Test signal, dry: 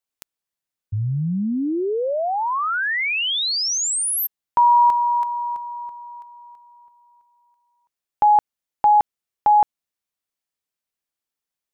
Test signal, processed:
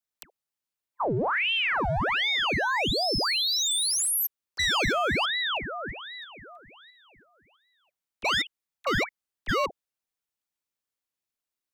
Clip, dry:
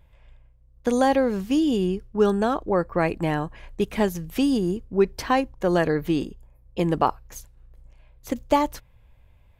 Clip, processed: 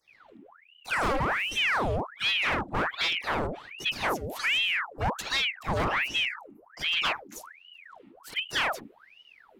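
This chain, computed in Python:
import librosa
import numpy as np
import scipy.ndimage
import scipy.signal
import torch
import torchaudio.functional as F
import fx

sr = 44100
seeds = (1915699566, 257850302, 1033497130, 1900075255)

y = fx.dispersion(x, sr, late='lows', ms=78.0, hz=620.0)
y = np.clip(10.0 ** (21.0 / 20.0) * y, -1.0, 1.0) / 10.0 ** (21.0 / 20.0)
y = fx.ring_lfo(y, sr, carrier_hz=1600.0, swing_pct=85, hz=1.3)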